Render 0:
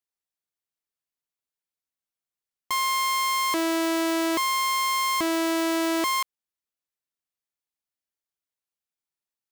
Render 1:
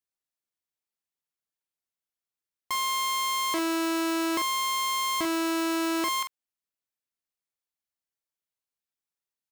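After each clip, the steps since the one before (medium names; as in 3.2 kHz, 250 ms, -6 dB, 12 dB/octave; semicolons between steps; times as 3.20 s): doubling 45 ms -8 dB; trim -3 dB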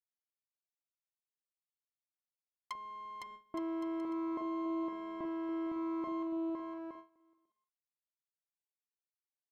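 low-pass that closes with the level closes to 710 Hz, closed at -27.5 dBFS; bouncing-ball echo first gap 510 ms, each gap 0.7×, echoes 5; gate with hold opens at -29 dBFS; trim -8.5 dB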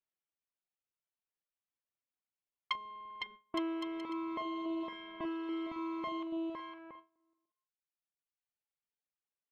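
reverb removal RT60 1.8 s; level-controlled noise filter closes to 1.2 kHz, open at -40 dBFS; peaking EQ 3 kHz +15 dB 1.2 oct; trim +3 dB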